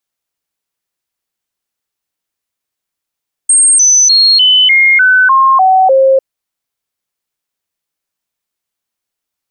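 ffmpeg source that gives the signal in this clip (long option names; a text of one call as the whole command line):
ffmpeg -f lavfi -i "aevalsrc='0.631*clip(min(mod(t,0.3),0.3-mod(t,0.3))/0.005,0,1)*sin(2*PI*8540*pow(2,-floor(t/0.3)/2)*mod(t,0.3))':duration=2.7:sample_rate=44100" out.wav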